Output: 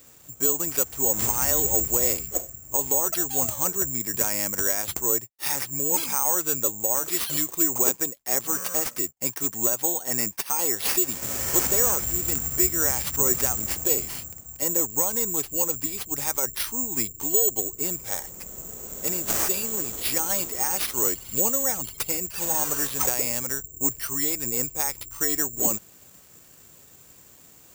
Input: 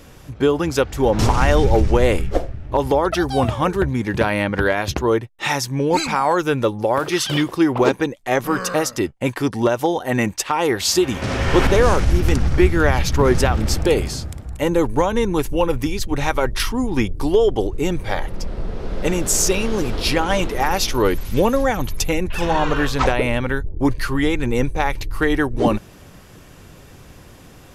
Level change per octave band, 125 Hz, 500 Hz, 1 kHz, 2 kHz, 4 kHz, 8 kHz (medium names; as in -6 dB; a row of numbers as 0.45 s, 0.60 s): -17.5 dB, -13.5 dB, -13.0 dB, -12.0 dB, -8.0 dB, +6.0 dB